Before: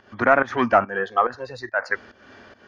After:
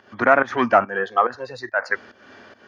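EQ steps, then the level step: high-pass 58 Hz; bass shelf 81 Hz -11 dB; +1.5 dB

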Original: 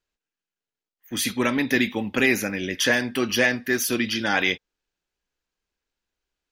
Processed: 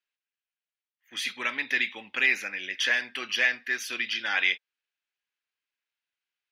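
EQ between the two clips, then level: band-pass filter 2.4 kHz, Q 1.3; 0.0 dB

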